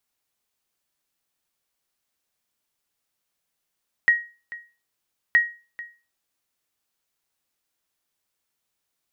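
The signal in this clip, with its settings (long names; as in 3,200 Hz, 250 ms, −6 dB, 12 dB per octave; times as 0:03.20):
ping with an echo 1,890 Hz, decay 0.33 s, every 1.27 s, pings 2, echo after 0.44 s, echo −19 dB −9.5 dBFS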